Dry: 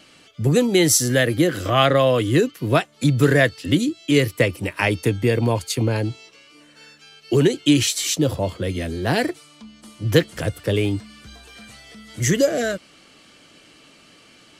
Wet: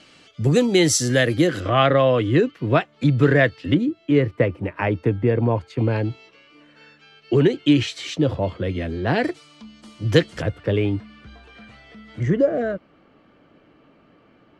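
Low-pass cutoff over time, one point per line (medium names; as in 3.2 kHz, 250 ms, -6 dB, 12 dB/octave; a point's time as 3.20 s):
7 kHz
from 1.60 s 2.8 kHz
from 3.74 s 1.5 kHz
from 5.78 s 2.8 kHz
from 9.24 s 5.9 kHz
from 10.42 s 2.4 kHz
from 12.23 s 1.2 kHz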